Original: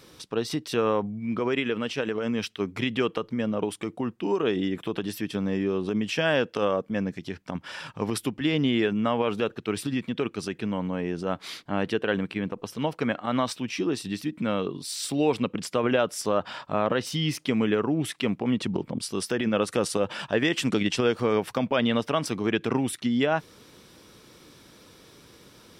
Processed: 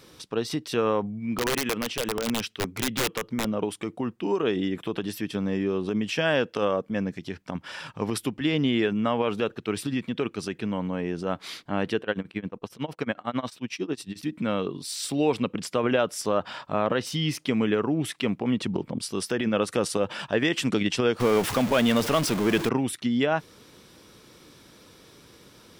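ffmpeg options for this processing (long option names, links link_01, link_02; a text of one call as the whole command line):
ffmpeg -i in.wav -filter_complex "[0:a]asettb=1/sr,asplit=3[link_01][link_02][link_03];[link_01]atrim=end=1.204[link_04];[link_02]atrim=start=1.2:end=3.45,asetpts=PTS-STARTPTS,afade=type=in:duration=0.004:curve=qsin,afade=type=out:start_time=2.246:duration=0.004:curve=qsin,aeval=exprs='(mod(9.44*val(0)+1,2)-1)/9.44':channel_layout=same[link_05];[link_03]atrim=start=3.446[link_06];[link_04][link_05]acrossfade=duration=0.004:curve1=hsin:curve2=qsin[link_07];[link_07][link_06]acrossfade=duration=0.004:curve1=qsin:curve2=hsin,asettb=1/sr,asplit=3[link_08][link_09][link_10];[link_08]atrim=end=12.014[link_11];[link_09]atrim=start=12.01:end=14.23,asetpts=PTS-STARTPTS,afade=type=in:duration=0.004:curve=qsin,afade=type=out:start_time=2.216:duration=0.004:curve=qsin,tremolo=f=11:d=0.94[link_12];[link_10]atrim=start=14.226[link_13];[link_11][link_12]acrossfade=duration=0.004:curve1=hsin:curve2=qsin[link_14];[link_14][link_13]acrossfade=duration=0.004:curve1=qsin:curve2=hsin,asettb=1/sr,asplit=3[link_15][link_16][link_17];[link_15]atrim=end=21.204[link_18];[link_16]atrim=start=21.2:end=22.69,asetpts=PTS-STARTPTS,afade=type=in:duration=0.004:curve=qsin,afade=type=out:start_time=1.486:duration=0.004:curve=qsin,aeval=exprs='val(0)+0.5*0.0531*sgn(val(0))':channel_layout=same[link_19];[link_17]atrim=start=22.686[link_20];[link_18][link_19]acrossfade=duration=0.004:curve1=hsin:curve2=qsin[link_21];[link_21][link_20]acrossfade=duration=0.004:curve1=qsin:curve2=hsin" out.wav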